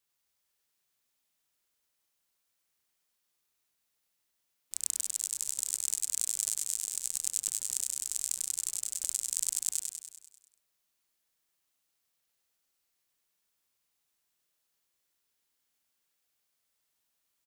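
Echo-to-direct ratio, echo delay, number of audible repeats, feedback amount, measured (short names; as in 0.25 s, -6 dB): -1.5 dB, 98 ms, 7, 58%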